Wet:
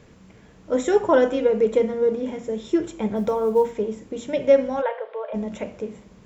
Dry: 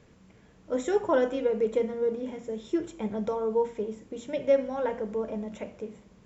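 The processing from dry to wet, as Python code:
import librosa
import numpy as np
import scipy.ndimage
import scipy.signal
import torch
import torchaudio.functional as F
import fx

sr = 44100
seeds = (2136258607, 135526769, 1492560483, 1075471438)

y = fx.quant_companded(x, sr, bits=8, at=(3.15, 3.71), fade=0.02)
y = fx.ellip_bandpass(y, sr, low_hz=530.0, high_hz=3600.0, order=3, stop_db=40, at=(4.81, 5.33), fade=0.02)
y = y * librosa.db_to_amplitude(7.0)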